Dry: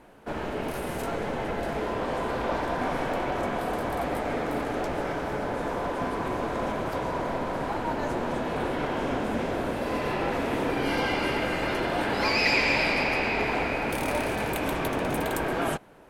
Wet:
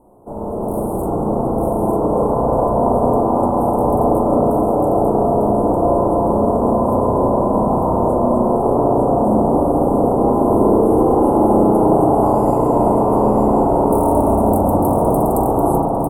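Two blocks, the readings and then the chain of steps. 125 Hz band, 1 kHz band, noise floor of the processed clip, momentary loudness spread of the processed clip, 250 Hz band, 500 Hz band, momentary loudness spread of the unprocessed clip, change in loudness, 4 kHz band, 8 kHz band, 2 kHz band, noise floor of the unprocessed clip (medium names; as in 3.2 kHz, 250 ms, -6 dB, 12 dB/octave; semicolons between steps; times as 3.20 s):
+14.5 dB, +13.0 dB, -21 dBFS, 5 LU, +15.5 dB, +14.5 dB, 6 LU, +12.5 dB, under -25 dB, no reading, under -20 dB, -33 dBFS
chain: inverse Chebyshev band-stop 1.6–5.7 kHz, stop band 40 dB; level rider gain up to 6 dB; doubling 42 ms -12.5 dB; delay 899 ms -4.5 dB; spring tank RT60 3.4 s, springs 33/52 ms, chirp 25 ms, DRR -3.5 dB; trim +2 dB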